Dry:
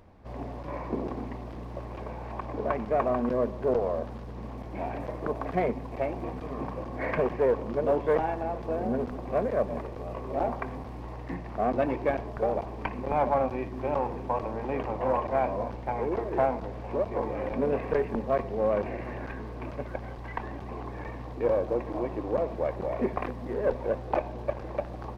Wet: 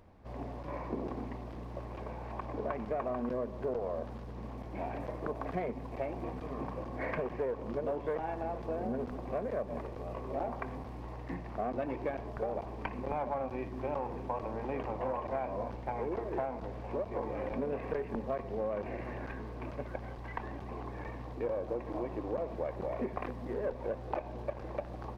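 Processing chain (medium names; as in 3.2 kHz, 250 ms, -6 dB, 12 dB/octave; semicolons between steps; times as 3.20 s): compression, threshold -27 dBFS, peak gain reduction 8 dB; trim -4 dB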